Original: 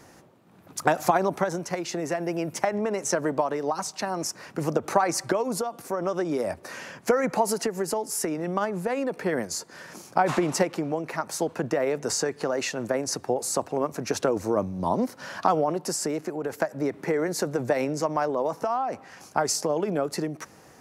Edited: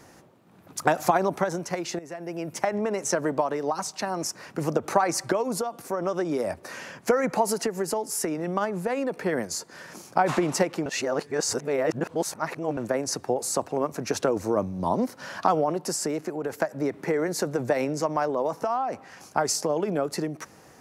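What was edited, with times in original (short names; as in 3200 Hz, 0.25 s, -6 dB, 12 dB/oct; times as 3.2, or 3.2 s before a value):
1.99–2.72 fade in, from -15 dB
10.86–12.77 reverse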